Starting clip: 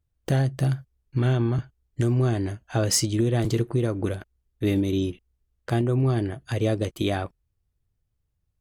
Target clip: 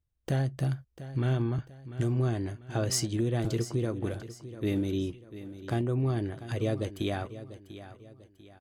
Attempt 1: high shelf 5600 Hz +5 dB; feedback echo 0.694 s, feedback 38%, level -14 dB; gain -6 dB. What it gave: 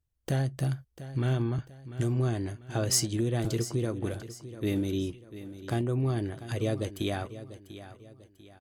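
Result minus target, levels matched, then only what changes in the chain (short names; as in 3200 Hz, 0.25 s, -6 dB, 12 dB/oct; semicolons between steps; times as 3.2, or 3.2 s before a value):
8000 Hz band +4.0 dB
change: high shelf 5600 Hz -2 dB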